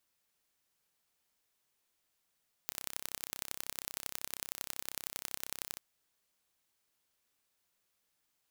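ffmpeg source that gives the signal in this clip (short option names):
-f lavfi -i "aevalsrc='0.355*eq(mod(n,1345),0)*(0.5+0.5*eq(mod(n,4035),0))':d=3.11:s=44100"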